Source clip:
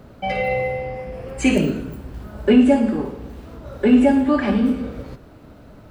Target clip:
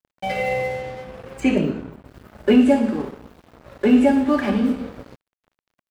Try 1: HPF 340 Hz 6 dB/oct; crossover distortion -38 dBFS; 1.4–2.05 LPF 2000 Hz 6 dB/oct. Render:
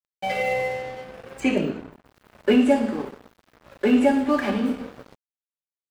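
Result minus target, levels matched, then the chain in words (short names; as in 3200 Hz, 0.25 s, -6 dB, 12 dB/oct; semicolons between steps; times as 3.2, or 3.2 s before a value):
125 Hz band -3.0 dB
HPF 110 Hz 6 dB/oct; crossover distortion -38 dBFS; 1.4–2.05 LPF 2000 Hz 6 dB/oct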